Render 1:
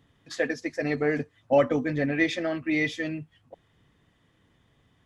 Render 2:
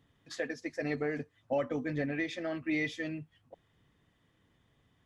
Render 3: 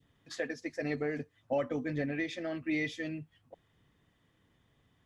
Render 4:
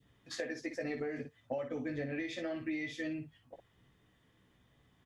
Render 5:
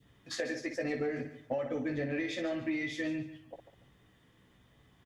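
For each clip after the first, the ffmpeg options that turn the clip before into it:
ffmpeg -i in.wav -af "alimiter=limit=-17dB:level=0:latency=1:release=389,volume=-5.5dB" out.wav
ffmpeg -i in.wav -af "adynamicequalizer=threshold=0.00316:dfrequency=1100:dqfactor=1.1:tfrequency=1100:tqfactor=1.1:attack=5:release=100:ratio=0.375:range=2:mode=cutabove:tftype=bell" out.wav
ffmpeg -i in.wav -af "aecho=1:1:16|58:0.531|0.376,acompressor=threshold=-34dB:ratio=12" out.wav
ffmpeg -i in.wav -filter_complex "[0:a]asplit=2[link_01][link_02];[link_02]asoftclip=type=tanh:threshold=-37dB,volume=-10dB[link_03];[link_01][link_03]amix=inputs=2:normalize=0,aecho=1:1:144|288|432:0.237|0.064|0.0173,volume=2dB" out.wav

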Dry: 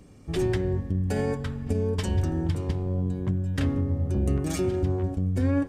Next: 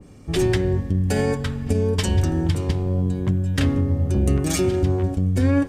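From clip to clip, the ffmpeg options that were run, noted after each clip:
ffmpeg -i in.wav -af "adynamicequalizer=threshold=0.00355:dfrequency=1900:dqfactor=0.7:tfrequency=1900:tqfactor=0.7:attack=5:release=100:ratio=0.375:range=2.5:mode=boostabove:tftype=highshelf,volume=5.5dB" out.wav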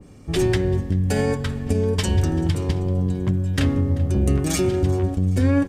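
ffmpeg -i in.wav -af "aecho=1:1:387|774|1161|1548:0.0891|0.0437|0.0214|0.0105" out.wav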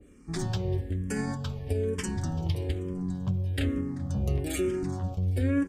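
ffmpeg -i in.wav -filter_complex "[0:a]asplit=2[link_01][link_02];[link_02]afreqshift=-1.1[link_03];[link_01][link_03]amix=inputs=2:normalize=1,volume=-6dB" out.wav

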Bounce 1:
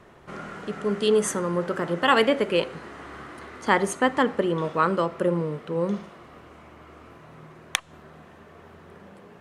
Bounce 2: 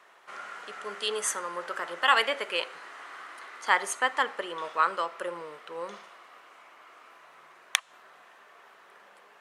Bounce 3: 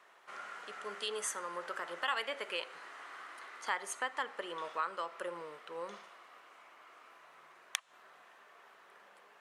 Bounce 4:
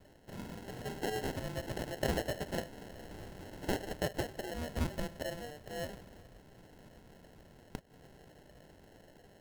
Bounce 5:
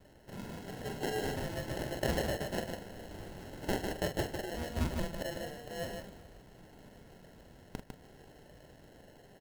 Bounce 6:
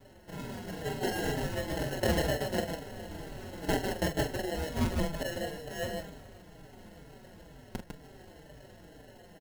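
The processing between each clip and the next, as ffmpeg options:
ffmpeg -i in.wav -af "highpass=930" out.wav
ffmpeg -i in.wav -af "acompressor=threshold=-31dB:ratio=2,volume=-5dB" out.wav
ffmpeg -i in.wav -af "acrusher=samples=37:mix=1:aa=0.000001,volume=2dB" out.wav
ffmpeg -i in.wav -af "aecho=1:1:43.73|151.6:0.398|0.562" out.wav
ffmpeg -i in.wav -filter_complex "[0:a]asplit=2[link_01][link_02];[link_02]adelay=4.7,afreqshift=-2.1[link_03];[link_01][link_03]amix=inputs=2:normalize=1,volume=7dB" out.wav

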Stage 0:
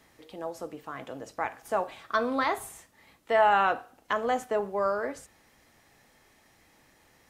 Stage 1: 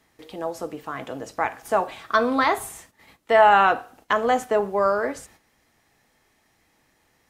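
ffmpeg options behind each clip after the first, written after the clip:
ffmpeg -i in.wav -af "agate=range=-10dB:threshold=-58dB:ratio=16:detection=peak,bandreject=frequency=550:width=18,volume=7dB" out.wav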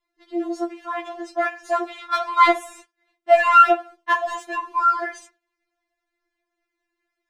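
ffmpeg -i in.wav -af "agate=range=-17dB:threshold=-43dB:ratio=16:detection=peak,adynamicsmooth=sensitivity=4:basefreq=5500,afftfilt=real='re*4*eq(mod(b,16),0)':imag='im*4*eq(mod(b,16),0)':win_size=2048:overlap=0.75,volume=5.5dB" out.wav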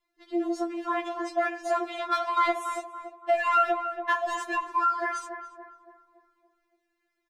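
ffmpeg -i in.wav -filter_complex "[0:a]acompressor=threshold=-24dB:ratio=3,asplit=2[link_01][link_02];[link_02]adelay=284,lowpass=frequency=1200:poles=1,volume=-7dB,asplit=2[link_03][link_04];[link_04]adelay=284,lowpass=frequency=1200:poles=1,volume=0.53,asplit=2[link_05][link_06];[link_06]adelay=284,lowpass=frequency=1200:poles=1,volume=0.53,asplit=2[link_07][link_08];[link_08]adelay=284,lowpass=frequency=1200:poles=1,volume=0.53,asplit=2[link_09][link_10];[link_10]adelay=284,lowpass=frequency=1200:poles=1,volume=0.53,asplit=2[link_11][link_12];[link_12]adelay=284,lowpass=frequency=1200:poles=1,volume=0.53[link_13];[link_03][link_05][link_07][link_09][link_11][link_13]amix=inputs=6:normalize=0[link_14];[link_01][link_14]amix=inputs=2:normalize=0" out.wav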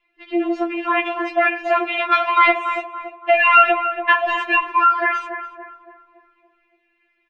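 ffmpeg -i in.wav -af "lowpass=frequency=2600:width_type=q:width=6,volume=7.5dB" out.wav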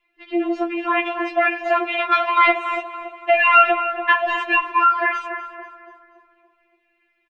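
ffmpeg -i in.wav -af "aecho=1:1:243|486|729|972:0.133|0.0653|0.032|0.0157,volume=-1dB" out.wav

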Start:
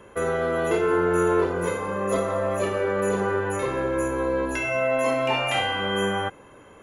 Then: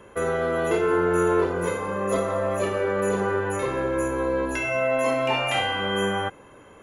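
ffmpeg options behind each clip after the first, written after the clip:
ffmpeg -i in.wav -af anull out.wav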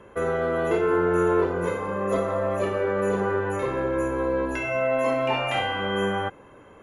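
ffmpeg -i in.wav -af "highshelf=frequency=3900:gain=-10" out.wav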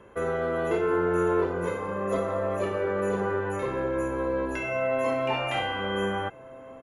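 ffmpeg -i in.wav -filter_complex "[0:a]asplit=2[link_01][link_02];[link_02]adelay=1633,volume=-18dB,highshelf=frequency=4000:gain=-36.7[link_03];[link_01][link_03]amix=inputs=2:normalize=0,volume=-3dB" out.wav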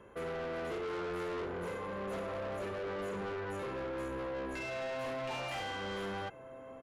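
ffmpeg -i in.wav -af "asoftclip=type=tanh:threshold=-31.5dB,volume=-4.5dB" out.wav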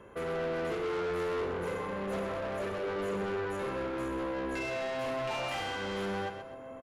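ffmpeg -i in.wav -af "aecho=1:1:127|254|381|508:0.376|0.124|0.0409|0.0135,volume=3.5dB" out.wav

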